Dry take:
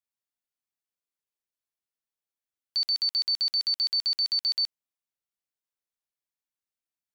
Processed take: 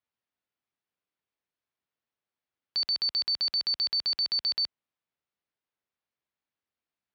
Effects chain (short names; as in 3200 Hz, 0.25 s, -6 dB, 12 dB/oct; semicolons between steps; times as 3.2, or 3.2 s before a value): HPF 56 Hz 12 dB/oct; air absorption 230 m; gain +7 dB